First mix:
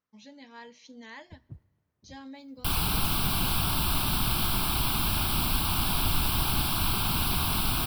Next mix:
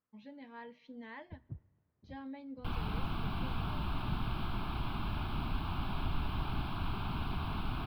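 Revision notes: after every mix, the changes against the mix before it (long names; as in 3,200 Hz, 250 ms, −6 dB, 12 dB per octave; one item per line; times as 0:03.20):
second sound −6.5 dB
master: add high-frequency loss of the air 460 metres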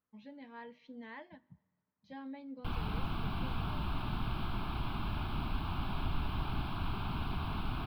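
first sound: add pair of resonant band-passes 420 Hz, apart 2.3 octaves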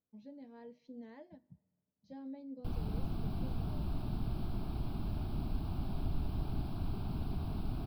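master: add flat-topped bell 1,800 Hz −14 dB 2.3 octaves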